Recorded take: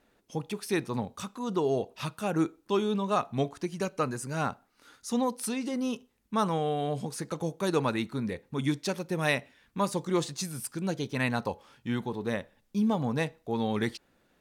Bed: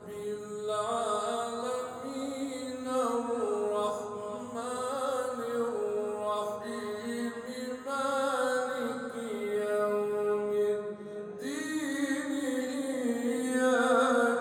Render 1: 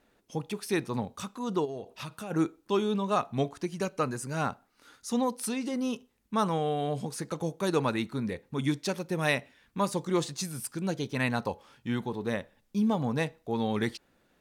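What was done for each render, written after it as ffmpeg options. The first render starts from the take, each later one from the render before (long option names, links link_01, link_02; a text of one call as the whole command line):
ffmpeg -i in.wav -filter_complex "[0:a]asplit=3[link_01][link_02][link_03];[link_01]afade=type=out:start_time=1.64:duration=0.02[link_04];[link_02]acompressor=threshold=-35dB:ratio=5:attack=3.2:release=140:knee=1:detection=peak,afade=type=in:start_time=1.64:duration=0.02,afade=type=out:start_time=2.3:duration=0.02[link_05];[link_03]afade=type=in:start_time=2.3:duration=0.02[link_06];[link_04][link_05][link_06]amix=inputs=3:normalize=0" out.wav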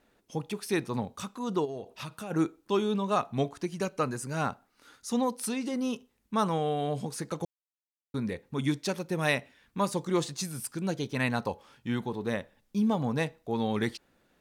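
ffmpeg -i in.wav -filter_complex "[0:a]asplit=3[link_01][link_02][link_03];[link_01]atrim=end=7.45,asetpts=PTS-STARTPTS,afade=type=out:start_time=7.446:duration=0.004:curve=hsin[link_04];[link_02]atrim=start=7.45:end=8.14,asetpts=PTS-STARTPTS,volume=0[link_05];[link_03]atrim=start=8.14,asetpts=PTS-STARTPTS,afade=type=in:duration=0.004:curve=hsin[link_06];[link_04][link_05][link_06]concat=n=3:v=0:a=1" out.wav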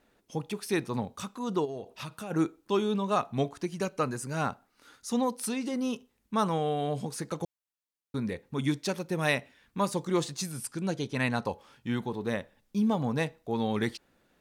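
ffmpeg -i in.wav -filter_complex "[0:a]asettb=1/sr,asplit=3[link_01][link_02][link_03];[link_01]atrim=end=10.524[link_04];[link_02]atrim=start=10.52:end=11.49,asetpts=PTS-STARTPTS,afade=type=in:duration=0.004:curve=qsin,afade=type=out:start_time=0.966:duration=0.004:curve=qsin,lowpass=frequency=12000:width=0.5412,lowpass=frequency=12000:width=1.3066[link_05];[link_03]atrim=start=11.486[link_06];[link_04][link_05]acrossfade=duration=0.004:curve1=hsin:curve2=qsin[link_07];[link_07][link_06]acrossfade=duration=0.004:curve1=qsin:curve2=hsin" out.wav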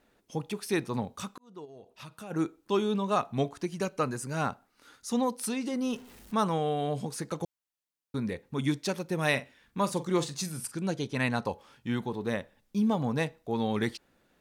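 ffmpeg -i in.wav -filter_complex "[0:a]asettb=1/sr,asplit=3[link_01][link_02][link_03];[link_01]atrim=end=5.904[link_04];[link_02]atrim=start=5.9:end=6.35,asetpts=PTS-STARTPTS,afade=type=in:duration=0.004:curve=qsin,afade=type=out:start_time=0.446:duration=0.004:curve=qsin,aeval=exprs='val(0)+0.5*0.00447*sgn(val(0))':channel_layout=same[link_05];[link_03]atrim=start=6.346[link_06];[link_04][link_05]acrossfade=duration=0.004:curve1=hsin:curve2=qsin[link_07];[link_07][link_06]acrossfade=duration=0.004:curve1=qsin:curve2=hsin,asettb=1/sr,asplit=3[link_08][link_09][link_10];[link_08]atrim=end=9.294[link_11];[link_09]atrim=start=9.29:end=10.74,asetpts=PTS-STARTPTS,afade=type=in:duration=0.004:curve=qsin,afade=type=out:start_time=1.446:duration=0.004:curve=qsin,asplit=2[link_12][link_13];[link_13]adelay=44,volume=-13dB[link_14];[link_12][link_14]amix=inputs=2:normalize=0,atrim=end_sample=63945[link_15];[link_10]atrim=start=10.736[link_16];[link_11][link_15]acrossfade=duration=0.004:curve1=hsin:curve2=qsin[link_17];[link_17][link_16]acrossfade=duration=0.004:curve1=qsin:curve2=hsin,asplit=2[link_18][link_19];[link_18]atrim=end=1.38,asetpts=PTS-STARTPTS,afade=type=out:start_time=1.376:duration=0.004:curve=hsin[link_20];[link_19]atrim=start=1.38,asetpts=PTS-STARTPTS,afade=type=in:duration=1.36[link_21];[link_20][link_21]concat=n=2:v=0:a=1" out.wav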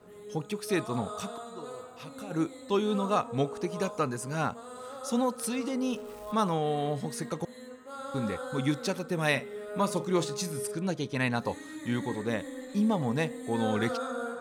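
ffmpeg -i in.wav -i bed.wav -filter_complex "[1:a]volume=-9dB[link_01];[0:a][link_01]amix=inputs=2:normalize=0" out.wav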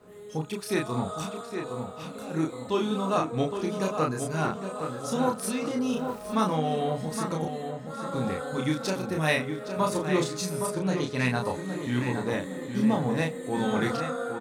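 ffmpeg -i in.wav -filter_complex "[0:a]asplit=2[link_01][link_02];[link_02]adelay=32,volume=-2.5dB[link_03];[link_01][link_03]amix=inputs=2:normalize=0,asplit=2[link_04][link_05];[link_05]adelay=815,lowpass=frequency=2900:poles=1,volume=-7dB,asplit=2[link_06][link_07];[link_07]adelay=815,lowpass=frequency=2900:poles=1,volume=0.48,asplit=2[link_08][link_09];[link_09]adelay=815,lowpass=frequency=2900:poles=1,volume=0.48,asplit=2[link_10][link_11];[link_11]adelay=815,lowpass=frequency=2900:poles=1,volume=0.48,asplit=2[link_12][link_13];[link_13]adelay=815,lowpass=frequency=2900:poles=1,volume=0.48,asplit=2[link_14][link_15];[link_15]adelay=815,lowpass=frequency=2900:poles=1,volume=0.48[link_16];[link_04][link_06][link_08][link_10][link_12][link_14][link_16]amix=inputs=7:normalize=0" out.wav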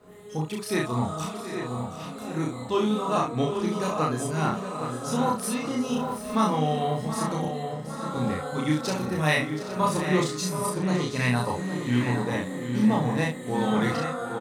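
ffmpeg -i in.wav -filter_complex "[0:a]asplit=2[link_01][link_02];[link_02]adelay=33,volume=-2dB[link_03];[link_01][link_03]amix=inputs=2:normalize=0,aecho=1:1:725:0.237" out.wav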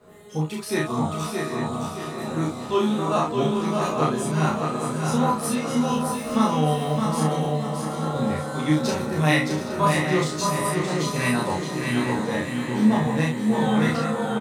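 ffmpeg -i in.wav -filter_complex "[0:a]asplit=2[link_01][link_02];[link_02]adelay=13,volume=-3dB[link_03];[link_01][link_03]amix=inputs=2:normalize=0,aecho=1:1:617|1234|1851|2468|3085:0.562|0.214|0.0812|0.0309|0.0117" out.wav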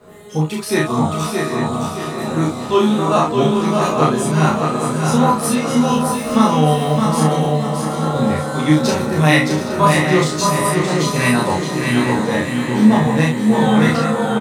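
ffmpeg -i in.wav -af "volume=7.5dB,alimiter=limit=-1dB:level=0:latency=1" out.wav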